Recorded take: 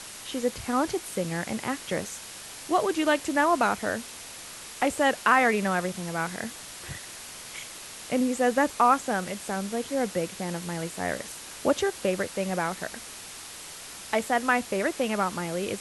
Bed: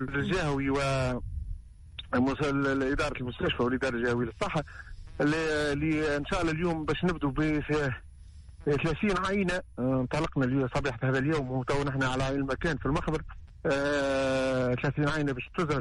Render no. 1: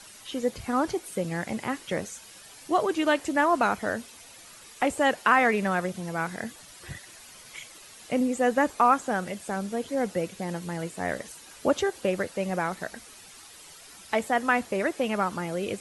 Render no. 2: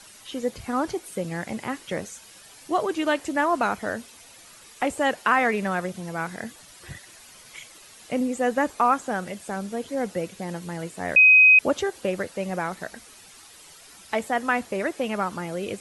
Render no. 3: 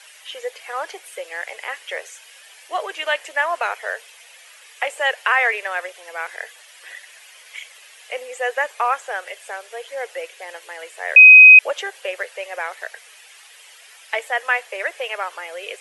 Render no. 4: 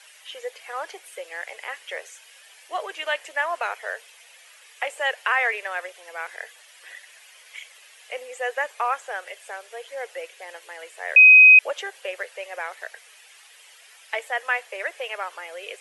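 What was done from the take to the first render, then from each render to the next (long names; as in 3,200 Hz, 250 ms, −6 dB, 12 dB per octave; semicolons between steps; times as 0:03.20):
broadband denoise 10 dB, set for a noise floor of −42 dBFS
0:11.16–0:11.59: beep over 2,520 Hz −10 dBFS
Butterworth high-pass 450 Hz 48 dB per octave; flat-topped bell 2,300 Hz +8 dB 1.2 octaves
level −4.5 dB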